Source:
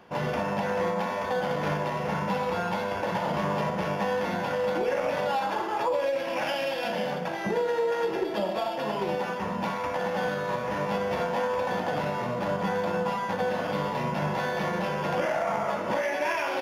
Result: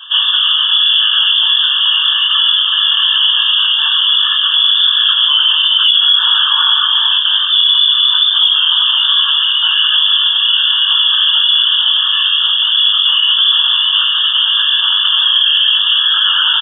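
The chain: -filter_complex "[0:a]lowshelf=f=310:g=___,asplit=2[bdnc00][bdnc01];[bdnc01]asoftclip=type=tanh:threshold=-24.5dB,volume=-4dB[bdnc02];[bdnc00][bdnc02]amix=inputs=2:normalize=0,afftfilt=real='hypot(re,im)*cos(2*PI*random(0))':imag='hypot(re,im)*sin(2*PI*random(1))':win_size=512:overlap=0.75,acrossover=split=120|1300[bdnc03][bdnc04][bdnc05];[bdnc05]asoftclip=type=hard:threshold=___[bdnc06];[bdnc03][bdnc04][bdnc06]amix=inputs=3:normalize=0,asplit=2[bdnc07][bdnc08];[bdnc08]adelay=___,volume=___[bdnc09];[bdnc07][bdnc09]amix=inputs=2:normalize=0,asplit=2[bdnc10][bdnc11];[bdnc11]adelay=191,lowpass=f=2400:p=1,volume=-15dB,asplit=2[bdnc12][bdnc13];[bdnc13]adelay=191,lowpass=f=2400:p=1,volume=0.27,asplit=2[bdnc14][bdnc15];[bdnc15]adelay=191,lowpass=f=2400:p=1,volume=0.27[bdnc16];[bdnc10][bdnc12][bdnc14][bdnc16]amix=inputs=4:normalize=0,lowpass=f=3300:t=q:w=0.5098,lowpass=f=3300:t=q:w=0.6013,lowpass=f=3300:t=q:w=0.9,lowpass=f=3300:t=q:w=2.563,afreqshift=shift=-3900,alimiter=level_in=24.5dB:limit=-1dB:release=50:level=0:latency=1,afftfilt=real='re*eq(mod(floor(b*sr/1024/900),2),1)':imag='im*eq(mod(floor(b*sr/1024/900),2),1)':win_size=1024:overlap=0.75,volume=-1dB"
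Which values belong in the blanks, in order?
-3, -36dB, 20, -3dB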